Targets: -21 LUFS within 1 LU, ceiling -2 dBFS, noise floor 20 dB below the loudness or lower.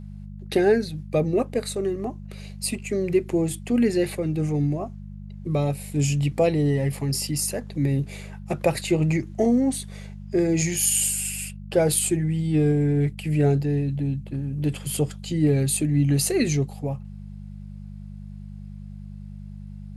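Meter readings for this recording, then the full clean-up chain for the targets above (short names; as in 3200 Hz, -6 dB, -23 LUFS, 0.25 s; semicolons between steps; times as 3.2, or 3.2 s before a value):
hum 50 Hz; harmonics up to 200 Hz; hum level -36 dBFS; loudness -24.0 LUFS; peak -8.0 dBFS; loudness target -21.0 LUFS
-> de-hum 50 Hz, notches 4; gain +3 dB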